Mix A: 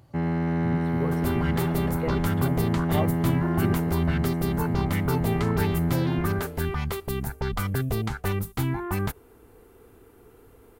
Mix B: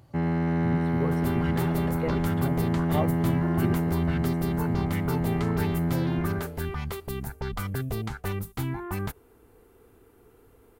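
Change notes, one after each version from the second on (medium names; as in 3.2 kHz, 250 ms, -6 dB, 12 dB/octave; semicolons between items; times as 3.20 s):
second sound -4.0 dB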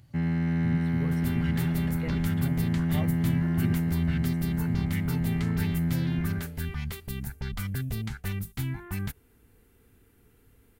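master: add high-order bell 640 Hz -10.5 dB 2.3 oct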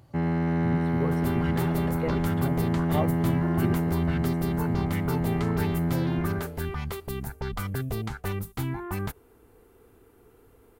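master: add high-order bell 640 Hz +10.5 dB 2.3 oct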